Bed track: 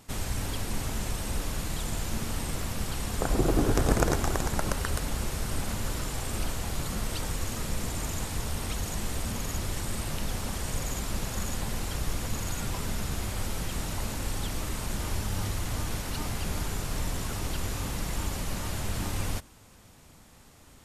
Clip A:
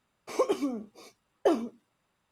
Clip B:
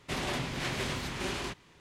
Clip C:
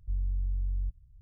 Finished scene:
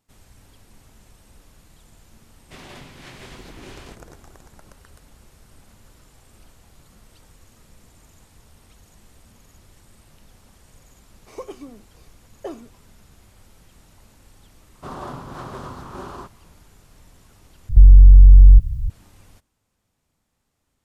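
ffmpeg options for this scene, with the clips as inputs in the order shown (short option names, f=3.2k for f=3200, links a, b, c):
-filter_complex "[2:a]asplit=2[a][b];[0:a]volume=-19.5dB[c];[b]highshelf=f=1.6k:t=q:w=3:g=-10[d];[3:a]alimiter=level_in=32.5dB:limit=-1dB:release=50:level=0:latency=1[e];[c]asplit=2[f][g];[f]atrim=end=17.694[h];[e]atrim=end=1.21,asetpts=PTS-STARTPTS,volume=-1dB[i];[g]atrim=start=18.896[j];[a]atrim=end=1.8,asetpts=PTS-STARTPTS,volume=-8.5dB,afade=t=in:d=0.004:c=hsin,afade=t=out:st=1.796:d=0.004:c=hsin,adelay=2420[k];[1:a]atrim=end=2.31,asetpts=PTS-STARTPTS,volume=-8.5dB,afade=t=in:d=0.004:c=hsin,afade=t=out:st=2.306:d=0.004:c=hsin,adelay=10990[l];[d]atrim=end=1.8,asetpts=PTS-STARTPTS,volume=-0.5dB,afade=t=in:d=0.004:c=hsin,afade=t=out:st=1.796:d=0.004:c=hsin,adelay=14740[m];[h][i]acrossfade=d=0.004:c1=hsin:c2=hsin[n];[n][j]acrossfade=d=0.004:c1=hsin:c2=hsin[o];[o][k][l][m]amix=inputs=4:normalize=0"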